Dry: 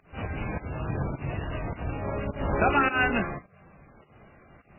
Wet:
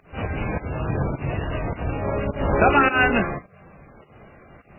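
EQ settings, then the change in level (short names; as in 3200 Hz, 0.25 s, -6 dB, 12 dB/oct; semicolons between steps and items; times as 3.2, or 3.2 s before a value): bell 490 Hz +2.5 dB; +5.5 dB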